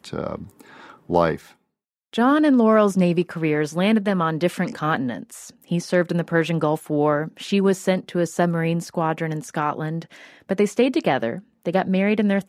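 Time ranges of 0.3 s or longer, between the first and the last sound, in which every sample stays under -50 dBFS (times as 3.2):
1.54–2.13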